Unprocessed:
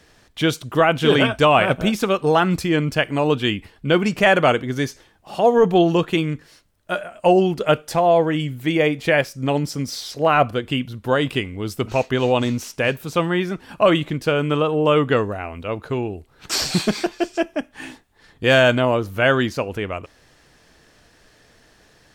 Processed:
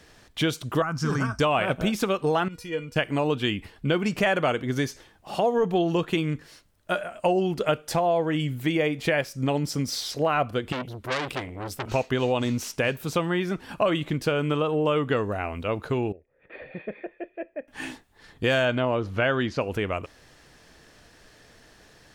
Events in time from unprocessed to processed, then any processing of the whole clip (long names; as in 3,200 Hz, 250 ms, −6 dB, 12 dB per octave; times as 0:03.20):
0:00.82–0:01.40: drawn EQ curve 160 Hz 0 dB, 280 Hz −7 dB, 580 Hz −18 dB, 1,200 Hz +1 dB, 3,400 Hz −26 dB, 5,200 Hz +10 dB, 8,200 Hz −3 dB, 13,000 Hz −7 dB
0:02.48–0:02.96: tuned comb filter 480 Hz, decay 0.16 s, mix 90%
0:10.72–0:11.89: saturating transformer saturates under 3,700 Hz
0:16.12–0:17.68: formant resonators in series e
0:18.65–0:19.61: low-pass filter 4,700 Hz
whole clip: downward compressor 3 to 1, threshold −22 dBFS